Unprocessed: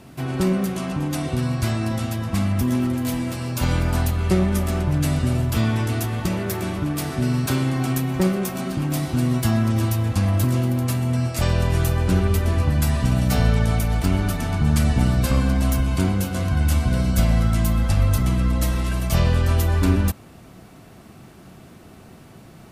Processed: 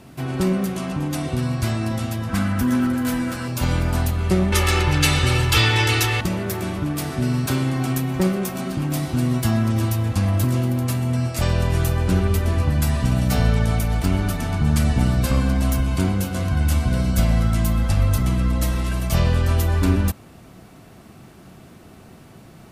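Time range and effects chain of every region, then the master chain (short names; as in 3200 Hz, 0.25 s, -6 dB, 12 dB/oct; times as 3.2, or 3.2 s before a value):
2.29–3.48 bell 1500 Hz +11 dB 0.47 oct + comb 4 ms, depth 35%
4.52–6.21 bell 3000 Hz +14 dB 2.8 oct + comb 2.3 ms, depth 77%
whole clip: dry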